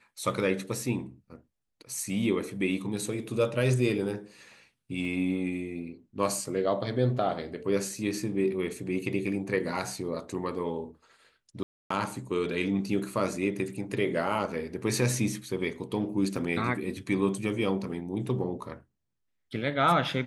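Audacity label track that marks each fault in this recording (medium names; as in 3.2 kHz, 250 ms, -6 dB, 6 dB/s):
5.050000	5.050000	dropout 2.1 ms
11.630000	11.900000	dropout 274 ms
16.360000	16.360000	dropout 2.3 ms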